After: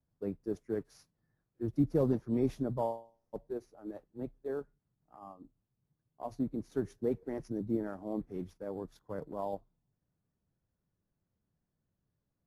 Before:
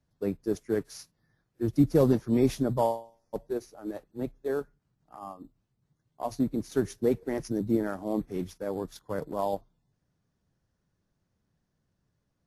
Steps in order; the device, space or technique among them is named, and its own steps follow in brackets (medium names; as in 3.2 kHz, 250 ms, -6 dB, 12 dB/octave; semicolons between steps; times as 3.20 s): through cloth (treble shelf 2 kHz -11 dB); trim -6.5 dB